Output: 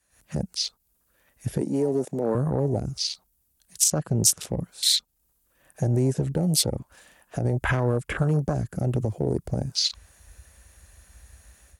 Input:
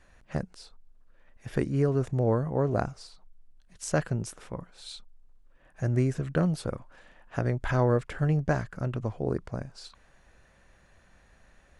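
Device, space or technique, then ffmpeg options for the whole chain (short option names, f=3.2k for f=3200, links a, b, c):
FM broadcast chain: -filter_complex "[0:a]highpass=f=43:w=0.5412,highpass=f=43:w=1.3066,dynaudnorm=f=100:g=3:m=16.5dB,acrossover=split=360|6600[a][b][c];[a]acompressor=threshold=-21dB:ratio=4[d];[b]acompressor=threshold=-24dB:ratio=4[e];[c]acompressor=threshold=-52dB:ratio=4[f];[d][e][f]amix=inputs=3:normalize=0,aemphasis=mode=production:type=50fm,alimiter=limit=-13dB:level=0:latency=1:release=68,asoftclip=type=hard:threshold=-15.5dB,lowpass=f=15k:w=0.5412,lowpass=f=15k:w=1.3066,aemphasis=mode=production:type=50fm,asettb=1/sr,asplit=3[g][h][i];[g]atrim=end=1.614[j];[h]atrim=start=1.61:end=2.35,asetpts=PTS-STARTPTS,afade=t=in:d=0.004:c=qsin,afade=t=out:st=0.736:d=0.004:c=qsin,highpass=f=190:w=0.5412,highpass=f=190:w=1.3066[k];[i]atrim=start=2.346[l];[j][k]acrossfade=d=0.004:c1=hsin:c2=qsin[m];[m][l]acrossfade=d=0.004:c1=qsin:c2=hsin,afwtdn=0.0398"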